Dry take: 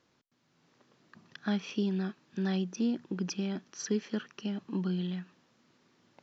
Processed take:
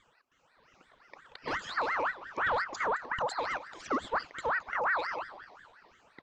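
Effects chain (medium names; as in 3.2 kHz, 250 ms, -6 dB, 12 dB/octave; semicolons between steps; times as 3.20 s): drifting ripple filter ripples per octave 0.56, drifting +2.5 Hz, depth 24 dB; treble shelf 4.7 kHz -10.5 dB; in parallel at -0.5 dB: peak limiter -22 dBFS, peak gain reduction 8.5 dB; on the sum: saturation -19 dBFS, distortion -14 dB; on a send: frequency-shifting echo 217 ms, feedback 50%, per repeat -47 Hz, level -16 dB; on the sum: ring modulator with a swept carrier 1.2 kHz, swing 45%, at 5.7 Hz; trim -3.5 dB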